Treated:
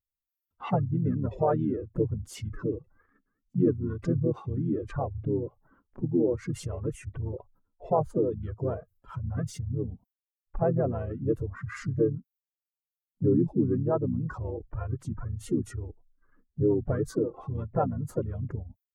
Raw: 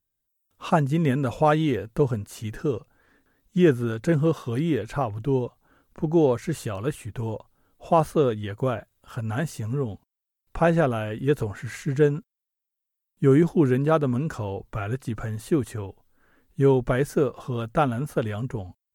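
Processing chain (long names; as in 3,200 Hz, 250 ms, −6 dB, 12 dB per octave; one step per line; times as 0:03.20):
expanding power law on the bin magnitudes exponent 2
in parallel at +1 dB: downward compressor 4 to 1, threshold −36 dBFS, peak gain reduction 18.5 dB
on the sum: pitch-shifted copies added −7 semitones −15 dB, −5 semitones −3 dB, +4 semitones −18 dB
noise gate −51 dBFS, range −13 dB
level −8.5 dB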